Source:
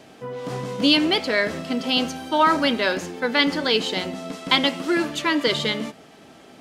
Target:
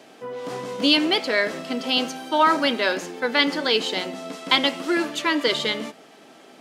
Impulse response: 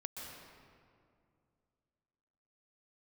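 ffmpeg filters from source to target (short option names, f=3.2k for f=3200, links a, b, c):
-af "highpass=250"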